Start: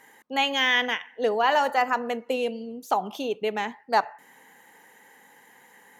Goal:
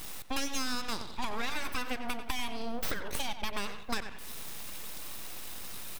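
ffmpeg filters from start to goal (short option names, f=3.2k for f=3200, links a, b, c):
-filter_complex "[0:a]highshelf=f=9.9k:g=6,acrossover=split=180[a][b];[b]acompressor=threshold=-34dB:ratio=2.5[c];[a][c]amix=inputs=2:normalize=0,highshelf=f=2.1k:g=12,aeval=exprs='abs(val(0))':c=same,asettb=1/sr,asplit=3[d][e][f];[d]atrim=end=1.524[g];[e]atrim=start=1.52:end=3.76,asetpts=PTS-STARTPTS,afade=t=in:d=0.004:c=qsin,afade=t=out:st=2.236:d=0.004:c=qsin,bandreject=f=7k:w=7.2[h];[f]atrim=start=3.756[i];[g][h]acrossfade=d=0.004:c1=hsin:c2=qsin[j];[j][i]acrossfade=d=0.004:c1=qsin:c2=hsin,asplit=2[k][l];[l]adelay=91,lowpass=f=3.7k:p=1,volume=-11.5dB,asplit=2[m][n];[n]adelay=91,lowpass=f=3.7k:p=1,volume=0.24,asplit=2[o][p];[p]adelay=91,lowpass=f=3.7k:p=1,volume=0.24[q];[k][m][o][q]amix=inputs=4:normalize=0,acompressor=threshold=-35dB:ratio=5,volume=6.5dB"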